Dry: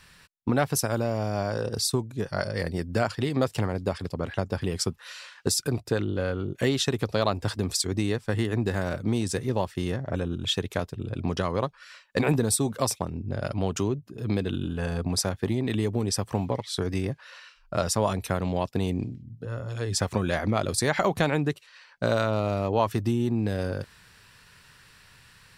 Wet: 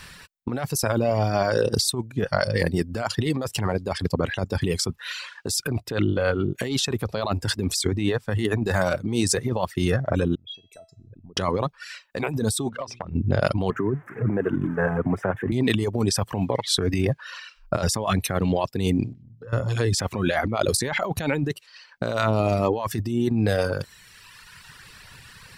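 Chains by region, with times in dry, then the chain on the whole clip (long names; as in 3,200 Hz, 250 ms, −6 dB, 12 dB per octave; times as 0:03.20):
0:10.35–0:11.37: spectral envelope exaggerated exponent 2 + downward compressor 3 to 1, threshold −33 dBFS + tuned comb filter 660 Hz, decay 0.51 s, mix 90%
0:12.69–0:13.15: low-pass filter 3,700 Hz + mains-hum notches 60/120/180/240/300/360/420 Hz + downward compressor 10 to 1, threshold −35 dBFS
0:13.70–0:15.52: spike at every zero crossing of −20 dBFS + elliptic band-pass filter 110–1,700 Hz
0:19.13–0:19.53: downward compressor, threshold −43 dBFS + high-shelf EQ 7,000 Hz −9.5 dB
whole clip: reverb reduction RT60 1.4 s; compressor whose output falls as the input rises −31 dBFS, ratio −1; level +8 dB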